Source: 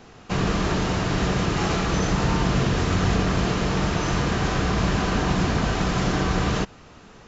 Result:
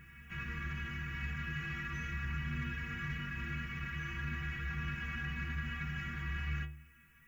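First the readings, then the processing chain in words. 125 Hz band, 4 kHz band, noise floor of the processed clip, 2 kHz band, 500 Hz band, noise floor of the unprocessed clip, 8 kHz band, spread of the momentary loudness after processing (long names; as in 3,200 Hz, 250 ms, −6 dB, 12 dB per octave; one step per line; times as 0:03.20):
−16.0 dB, −20.0 dB, −62 dBFS, −9.5 dB, −33.0 dB, −47 dBFS, can't be measured, 2 LU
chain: stiff-string resonator 70 Hz, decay 0.66 s, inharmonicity 0.03
background noise violet −60 dBFS
drawn EQ curve 190 Hz 0 dB, 630 Hz −27 dB, 1,700 Hz +8 dB, 2,600 Hz +6 dB, 4,000 Hz −19 dB, 7,900 Hz −11 dB
backwards echo 1,051 ms −15.5 dB
in parallel at −6 dB: soft clipping −32 dBFS, distortion −14 dB
on the sum: level −7 dB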